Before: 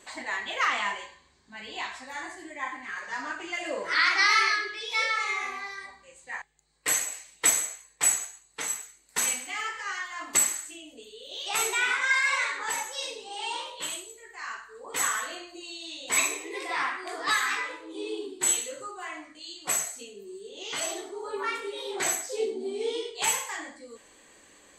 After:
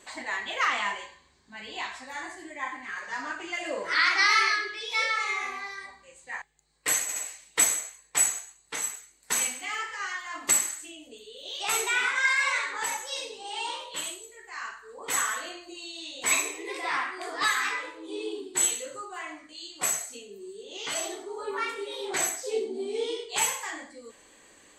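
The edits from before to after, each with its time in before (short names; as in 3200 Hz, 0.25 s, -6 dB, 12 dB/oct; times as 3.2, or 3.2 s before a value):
7.02 stutter 0.07 s, 3 plays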